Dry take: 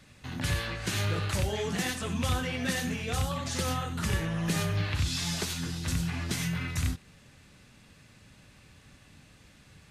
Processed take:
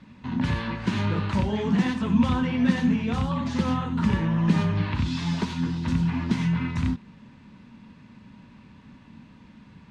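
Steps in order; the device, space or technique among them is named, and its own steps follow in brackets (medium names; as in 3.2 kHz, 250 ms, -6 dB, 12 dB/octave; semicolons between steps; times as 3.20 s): inside a cardboard box (low-pass 3.6 kHz 12 dB/octave; small resonant body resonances 220/950 Hz, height 16 dB, ringing for 40 ms)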